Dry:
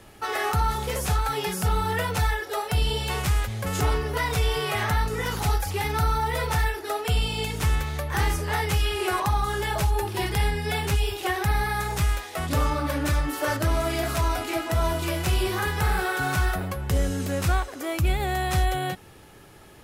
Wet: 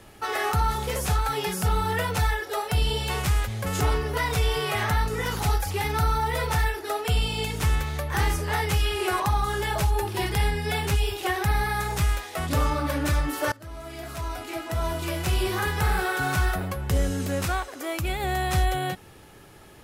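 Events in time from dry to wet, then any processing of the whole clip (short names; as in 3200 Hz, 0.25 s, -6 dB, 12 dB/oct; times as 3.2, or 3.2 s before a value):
13.52–15.57 fade in, from -23 dB
17.45–18.24 low shelf 210 Hz -8 dB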